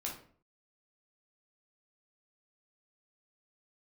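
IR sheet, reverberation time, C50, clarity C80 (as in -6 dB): 0.50 s, 5.5 dB, 11.5 dB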